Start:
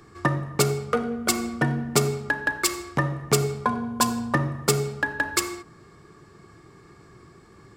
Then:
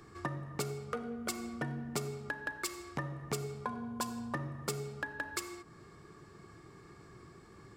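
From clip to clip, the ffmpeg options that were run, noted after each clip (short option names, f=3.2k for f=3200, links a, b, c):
-af "acompressor=threshold=-38dB:ratio=2,volume=-4.5dB"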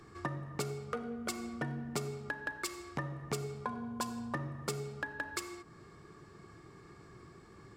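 -af "highshelf=f=11k:g=-6"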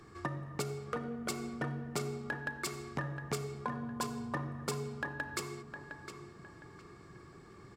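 -filter_complex "[0:a]asplit=2[a][b];[b]adelay=710,lowpass=f=3.7k:p=1,volume=-8dB,asplit=2[c][d];[d]adelay=710,lowpass=f=3.7k:p=1,volume=0.33,asplit=2[e][f];[f]adelay=710,lowpass=f=3.7k:p=1,volume=0.33,asplit=2[g][h];[h]adelay=710,lowpass=f=3.7k:p=1,volume=0.33[i];[a][c][e][g][i]amix=inputs=5:normalize=0"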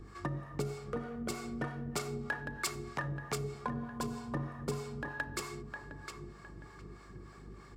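-filter_complex "[0:a]aeval=exprs='val(0)+0.00251*(sin(2*PI*50*n/s)+sin(2*PI*2*50*n/s)/2+sin(2*PI*3*50*n/s)/3+sin(2*PI*4*50*n/s)/4+sin(2*PI*5*50*n/s)/5)':c=same,acrossover=split=550[a][b];[a]aeval=exprs='val(0)*(1-0.7/2+0.7/2*cos(2*PI*3.2*n/s))':c=same[c];[b]aeval=exprs='val(0)*(1-0.7/2-0.7/2*cos(2*PI*3.2*n/s))':c=same[d];[c][d]amix=inputs=2:normalize=0,volume=3.5dB"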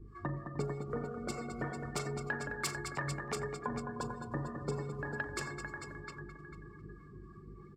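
-af "aecho=1:1:41|88|212|306|446:0.266|0.168|0.447|0.178|0.447,afftdn=nr=19:nf=-48,volume=-1dB"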